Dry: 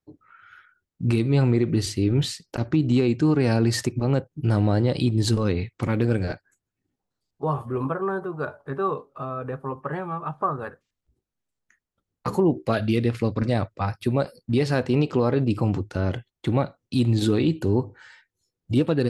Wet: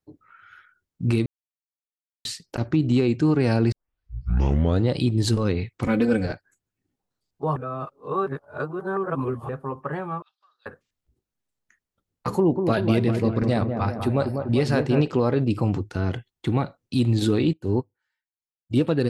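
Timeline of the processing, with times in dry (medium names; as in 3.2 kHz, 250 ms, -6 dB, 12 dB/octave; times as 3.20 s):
1.26–2.25 s: mute
3.72 s: tape start 1.17 s
5.84–6.26 s: comb 4 ms, depth 96%
7.56–9.49 s: reverse
10.22–10.66 s: Butterworth band-pass 4.3 kHz, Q 2.5
12.36–15.08 s: feedback echo behind a low-pass 196 ms, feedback 60%, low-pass 1.3 kHz, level -5.5 dB
15.79–16.65 s: band-stop 570 Hz, Q 5.7
17.53–18.74 s: upward expansion 2.5:1, over -40 dBFS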